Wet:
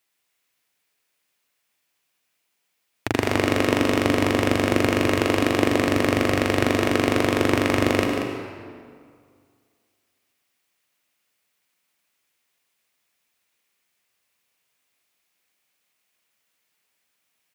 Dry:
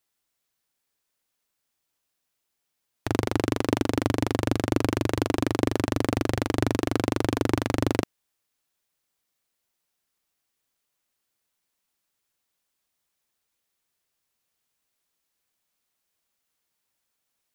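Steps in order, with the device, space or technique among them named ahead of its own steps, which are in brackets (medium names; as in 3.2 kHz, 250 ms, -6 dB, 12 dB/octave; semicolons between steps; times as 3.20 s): PA in a hall (high-pass 140 Hz 6 dB/octave; peaking EQ 2.3 kHz +6.5 dB 0.8 oct; delay 186 ms -8.5 dB; reverberation RT60 2.1 s, pre-delay 73 ms, DRR 3 dB); trim +3 dB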